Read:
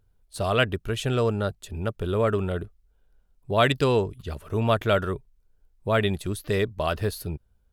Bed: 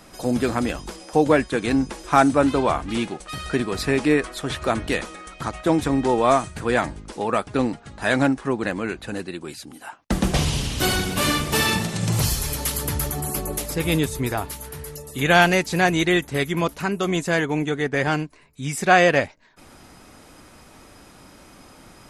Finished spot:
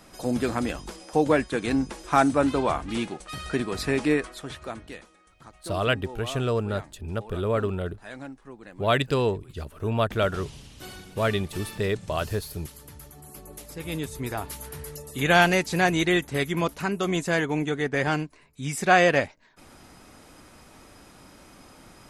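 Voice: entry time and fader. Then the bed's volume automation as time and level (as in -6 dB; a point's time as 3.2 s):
5.30 s, -2.0 dB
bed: 4.12 s -4 dB
5.12 s -20.5 dB
13.12 s -20.5 dB
14.59 s -3 dB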